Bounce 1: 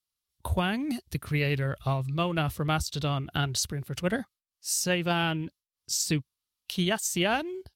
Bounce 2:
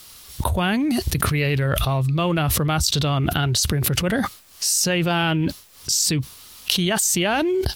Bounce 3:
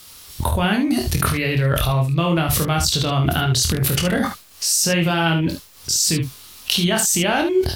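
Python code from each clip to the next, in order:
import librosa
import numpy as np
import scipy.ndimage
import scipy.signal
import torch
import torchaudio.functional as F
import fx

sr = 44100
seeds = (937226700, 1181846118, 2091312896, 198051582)

y1 = fx.env_flatten(x, sr, amount_pct=100)
y1 = y1 * librosa.db_to_amplitude(3.0)
y2 = fx.room_early_taps(y1, sr, ms=(24, 51, 73), db=(-5.0, -10.5, -8.0))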